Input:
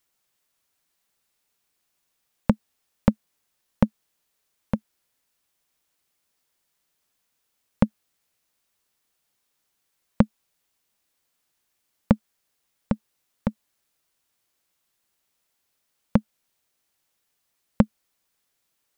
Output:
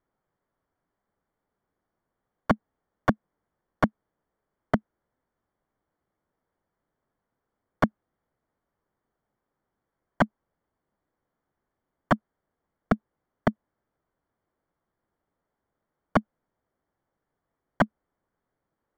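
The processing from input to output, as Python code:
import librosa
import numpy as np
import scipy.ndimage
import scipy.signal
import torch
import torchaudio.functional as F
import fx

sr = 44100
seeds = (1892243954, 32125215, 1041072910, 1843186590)

y = fx.tilt_shelf(x, sr, db=6.5, hz=1300.0)
y = (np.mod(10.0 ** (10.5 / 20.0) * y + 1.0, 2.0) - 1.0) / 10.0 ** (10.5 / 20.0)
y = scipy.signal.savgol_filter(y, 41, 4, mode='constant')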